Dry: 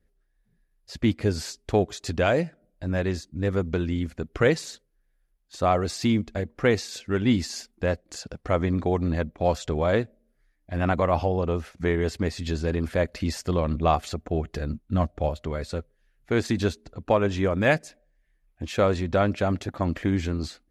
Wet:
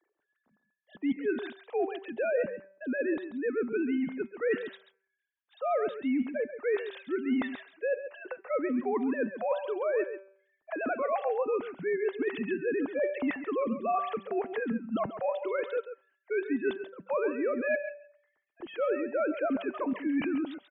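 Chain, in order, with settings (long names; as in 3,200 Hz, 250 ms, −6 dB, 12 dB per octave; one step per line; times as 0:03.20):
three sine waves on the formant tracks
parametric band 200 Hz −3.5 dB 0.37 octaves
hum removal 194.1 Hz, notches 14
reversed playback
downward compressor 8 to 1, threshold −31 dBFS, peak gain reduction 17.5 dB
reversed playback
single-tap delay 136 ms −11 dB
level +4 dB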